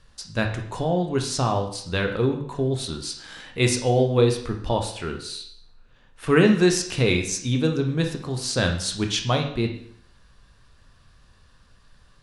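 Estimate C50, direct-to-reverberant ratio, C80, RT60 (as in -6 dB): 8.0 dB, 3.5 dB, 11.0 dB, 0.60 s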